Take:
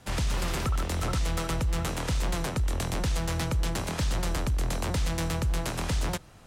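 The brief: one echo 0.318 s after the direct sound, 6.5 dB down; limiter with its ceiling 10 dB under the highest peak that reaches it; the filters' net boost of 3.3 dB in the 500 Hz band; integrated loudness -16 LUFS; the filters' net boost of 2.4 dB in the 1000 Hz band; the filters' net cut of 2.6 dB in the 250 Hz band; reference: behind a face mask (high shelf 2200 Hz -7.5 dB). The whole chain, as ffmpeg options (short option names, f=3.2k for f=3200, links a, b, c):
-af "equalizer=f=250:t=o:g=-6,equalizer=f=500:t=o:g=5,equalizer=f=1k:t=o:g=3.5,alimiter=level_in=3.5dB:limit=-24dB:level=0:latency=1,volume=-3.5dB,highshelf=f=2.2k:g=-7.5,aecho=1:1:318:0.473,volume=19.5dB"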